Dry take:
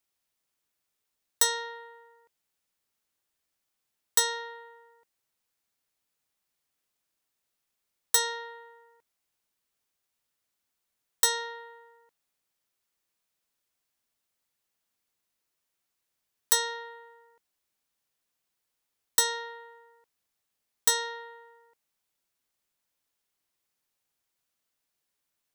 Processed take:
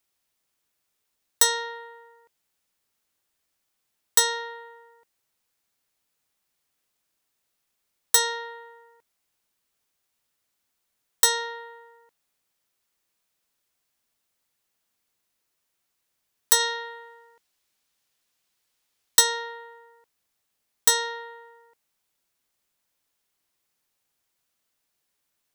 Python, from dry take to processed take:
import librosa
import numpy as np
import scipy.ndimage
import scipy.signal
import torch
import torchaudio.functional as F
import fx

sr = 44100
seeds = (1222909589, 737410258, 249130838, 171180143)

y = fx.peak_eq(x, sr, hz=4000.0, db=4.5, octaves=2.4, at=(16.59, 19.2), fade=0.02)
y = y * librosa.db_to_amplitude(4.5)